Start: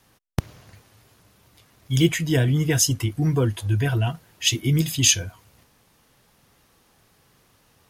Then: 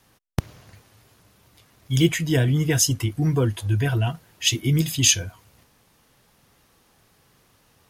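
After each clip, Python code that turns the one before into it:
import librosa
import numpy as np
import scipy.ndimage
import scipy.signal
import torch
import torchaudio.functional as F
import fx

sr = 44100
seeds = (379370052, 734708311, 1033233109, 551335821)

y = x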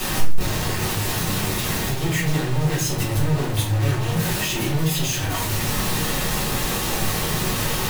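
y = np.sign(x) * np.sqrt(np.mean(np.square(x)))
y = fx.room_shoebox(y, sr, seeds[0], volume_m3=49.0, walls='mixed', distance_m=1.5)
y = y * librosa.db_to_amplitude(-7.0)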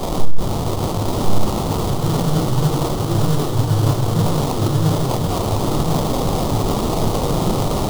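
y = fx.sample_hold(x, sr, seeds[1], rate_hz=1600.0, jitter_pct=20)
y = fx.band_shelf(y, sr, hz=2000.0, db=-11.0, octaves=1.0)
y = y + 10.0 ** (-4.0 / 20.0) * np.pad(y, (int(1052 * sr / 1000.0), 0))[:len(y)]
y = y * librosa.db_to_amplitude(3.0)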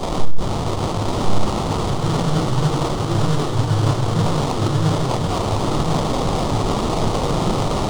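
y = fx.dynamic_eq(x, sr, hz=1800.0, q=0.72, threshold_db=-37.0, ratio=4.0, max_db=5)
y = scipy.signal.savgol_filter(y, 9, 4, mode='constant')
y = y * librosa.db_to_amplitude(-1.5)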